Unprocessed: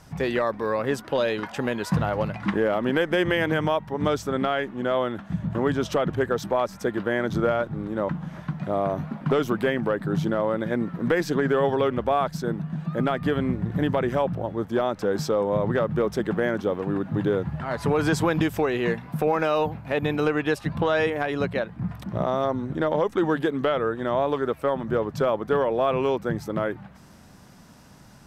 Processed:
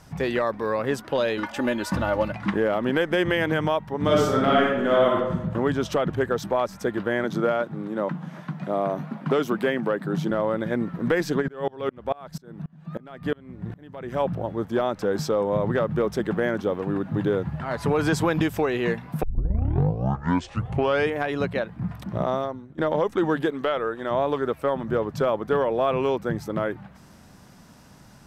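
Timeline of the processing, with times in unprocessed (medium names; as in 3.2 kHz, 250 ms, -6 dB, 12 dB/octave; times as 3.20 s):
1.37–2.32 s: comb 3.4 ms, depth 75%
4.02–5.14 s: reverb throw, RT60 1 s, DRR -4 dB
7.24–10.31 s: high-pass 150 Hz 24 dB/octave
11.41–14.19 s: sawtooth tremolo in dB swelling 5.4 Hz -> 1.9 Hz, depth 29 dB
19.23 s: tape start 1.92 s
22.34–22.78 s: fade out quadratic, to -18 dB
23.50–24.11 s: peaking EQ 110 Hz -9.5 dB 2.5 oct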